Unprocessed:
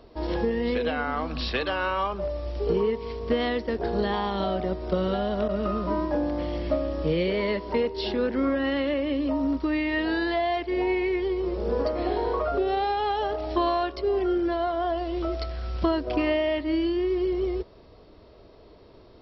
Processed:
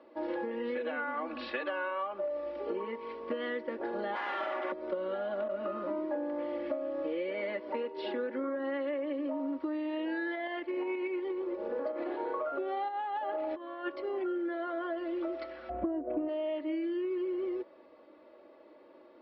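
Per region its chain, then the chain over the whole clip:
0:04.15–0:04.72: lower of the sound and its delayed copy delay 2.9 ms + low-shelf EQ 410 Hz −9.5 dB + mid-hump overdrive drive 23 dB, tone 3,000 Hz, clips at −20 dBFS
0:10.35–0:12.20: shaped tremolo saw up 8.3 Hz, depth 40% + highs frequency-modulated by the lows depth 0.12 ms
0:12.88–0:13.89: low-pass filter 4,400 Hz + compressor whose output falls as the input rises −29 dBFS, ratio −0.5
0:15.69–0:16.27: low-pass filter 2,100 Hz + spectral tilt −4.5 dB per octave + steady tone 710 Hz −14 dBFS
whole clip: Chebyshev band-pass filter 370–2,100 Hz, order 2; comb filter 3.5 ms, depth 96%; downward compressor, threshold −27 dBFS; level −4.5 dB

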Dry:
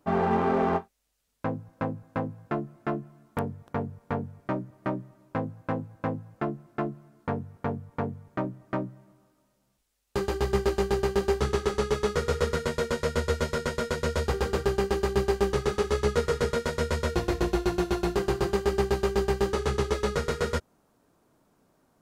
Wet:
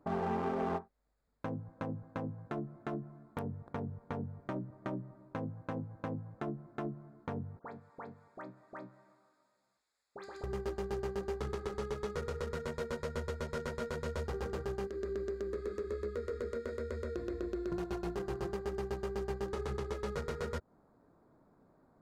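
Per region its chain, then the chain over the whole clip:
0:07.59–0:10.44: meter weighting curve ITU-R 468 + downward compressor 16 to 1, threshold −39 dBFS + all-pass dispersion highs, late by 88 ms, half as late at 2,200 Hz
0:14.87–0:17.72: high-pass filter 62 Hz + downward compressor 5 to 1, threshold −32 dBFS + phaser with its sweep stopped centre 350 Hz, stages 4
whole clip: adaptive Wiener filter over 15 samples; downward compressor, threshold −32 dBFS; brickwall limiter −28 dBFS; level +1 dB

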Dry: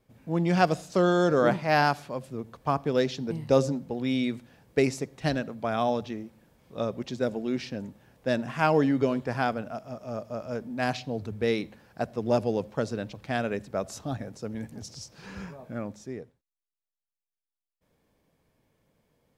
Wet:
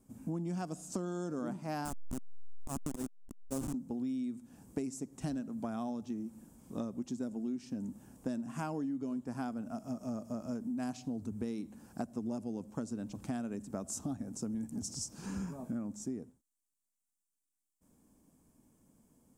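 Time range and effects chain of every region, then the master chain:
0:01.85–0:03.74: hold until the input has moved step −20.5 dBFS + volume swells 133 ms
whole clip: octave-band graphic EQ 125/250/500/2,000/4,000/8,000 Hz −5/+10/−9/−11/−11/+12 dB; downward compressor 12 to 1, threshold −37 dBFS; level +2.5 dB

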